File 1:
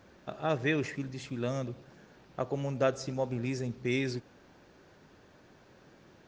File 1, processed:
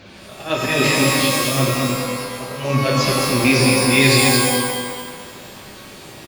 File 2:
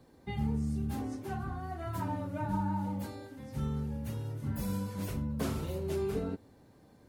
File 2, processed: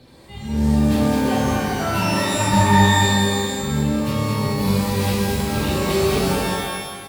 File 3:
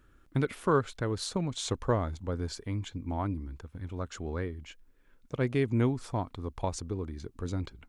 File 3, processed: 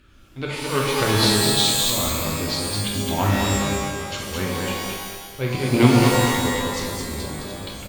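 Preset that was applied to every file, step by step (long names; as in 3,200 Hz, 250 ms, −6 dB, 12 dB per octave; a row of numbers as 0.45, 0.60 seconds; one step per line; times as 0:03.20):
flanger 0.35 Hz, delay 0.4 ms, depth 7.9 ms, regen −61%
volume swells 207 ms
harmonic generator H 6 −20 dB, 7 −26 dB, 8 −23 dB, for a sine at −19.5 dBFS
flat-topped bell 3,300 Hz +9 dB 1.3 octaves
on a send: repeating echo 214 ms, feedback 37%, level −4 dB
on the sum: reverb with rising layers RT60 1 s, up +12 semitones, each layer −2 dB, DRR −1 dB
normalise the peak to −1.5 dBFS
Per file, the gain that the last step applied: +20.5, +17.0, +13.5 decibels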